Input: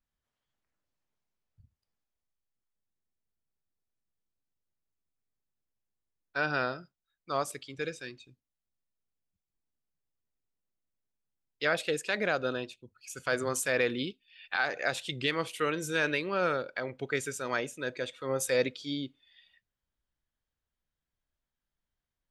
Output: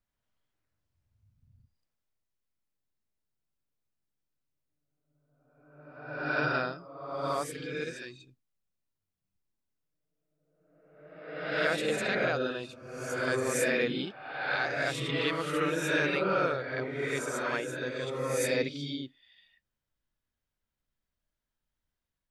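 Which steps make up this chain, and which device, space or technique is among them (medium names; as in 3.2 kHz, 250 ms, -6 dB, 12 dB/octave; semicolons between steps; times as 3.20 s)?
reverse reverb (reverse; reverberation RT60 1.3 s, pre-delay 30 ms, DRR -2 dB; reverse); trim -3 dB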